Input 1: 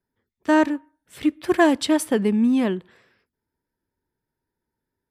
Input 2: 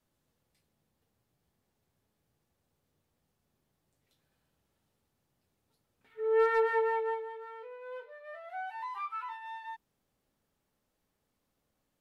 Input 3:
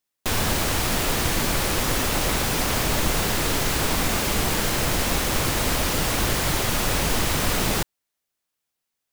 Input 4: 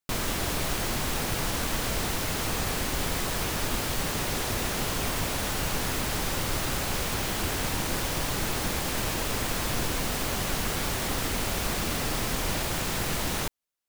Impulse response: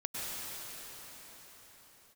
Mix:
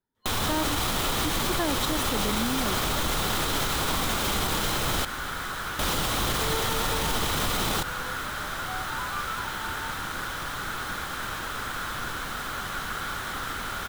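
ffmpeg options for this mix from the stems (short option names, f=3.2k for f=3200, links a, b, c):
-filter_complex "[0:a]volume=-5.5dB[a];[1:a]adelay=150,volume=-2.5dB[b];[2:a]acrusher=bits=7:mix=0:aa=0.000001,volume=0.5dB,asplit=3[c][d][e];[c]atrim=end=5.05,asetpts=PTS-STARTPTS,afade=t=out:st=5.046:d=0.004:c=hsin[f];[d]atrim=start=5.05:end=5.79,asetpts=PTS-STARTPTS,volume=0[g];[e]atrim=start=5.79,asetpts=PTS-STARTPTS,afade=t=in:d=0.004:c=hsin[h];[f][g][h]concat=n=3:v=0:a=1[i];[3:a]equalizer=f=1.5k:t=o:w=0.7:g=13,adelay=2250,volume=-8.5dB[j];[a][b][i][j]amix=inputs=4:normalize=0,superequalizer=9b=1.41:10b=1.78:13b=1.78,alimiter=limit=-17dB:level=0:latency=1:release=65"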